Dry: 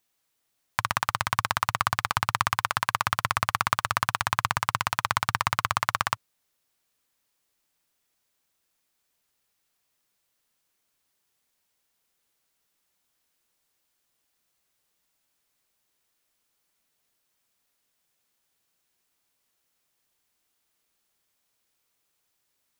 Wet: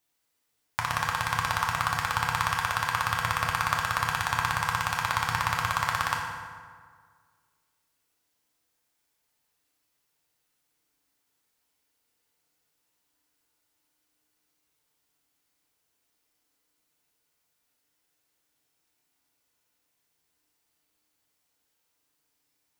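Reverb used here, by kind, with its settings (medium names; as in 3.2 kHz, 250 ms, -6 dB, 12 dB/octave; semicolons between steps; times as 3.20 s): FDN reverb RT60 1.8 s, low-frequency decay 1×, high-frequency decay 0.6×, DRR -2 dB; trim -4 dB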